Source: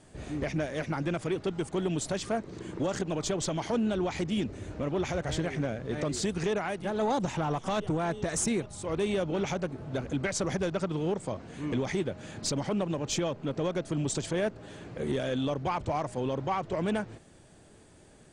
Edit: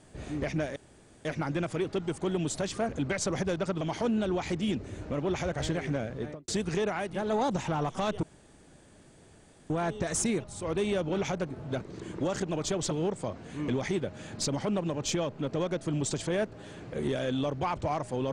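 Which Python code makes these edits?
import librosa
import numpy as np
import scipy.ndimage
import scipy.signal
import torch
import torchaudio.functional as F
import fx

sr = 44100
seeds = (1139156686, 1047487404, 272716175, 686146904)

y = fx.studio_fade_out(x, sr, start_s=5.81, length_s=0.36)
y = fx.edit(y, sr, fx.insert_room_tone(at_s=0.76, length_s=0.49),
    fx.swap(start_s=2.4, length_s=1.1, other_s=10.03, other_length_s=0.92),
    fx.insert_room_tone(at_s=7.92, length_s=1.47), tone=tone)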